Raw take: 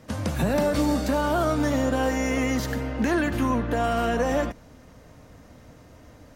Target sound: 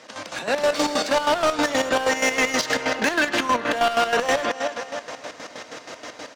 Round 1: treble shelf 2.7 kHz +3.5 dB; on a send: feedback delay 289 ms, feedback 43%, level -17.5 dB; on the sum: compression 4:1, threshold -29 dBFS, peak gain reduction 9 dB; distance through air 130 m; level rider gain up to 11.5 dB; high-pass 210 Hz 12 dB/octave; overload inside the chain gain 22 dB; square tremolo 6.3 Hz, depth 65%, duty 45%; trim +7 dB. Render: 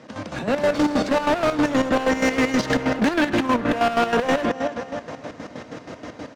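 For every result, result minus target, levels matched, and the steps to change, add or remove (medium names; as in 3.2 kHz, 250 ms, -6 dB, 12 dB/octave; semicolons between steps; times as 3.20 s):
250 Hz band +7.0 dB; 4 kHz band -5.5 dB
change: high-pass 480 Hz 12 dB/octave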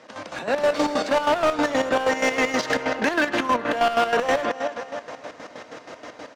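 4 kHz band -4.0 dB
change: treble shelf 2.7 kHz +14.5 dB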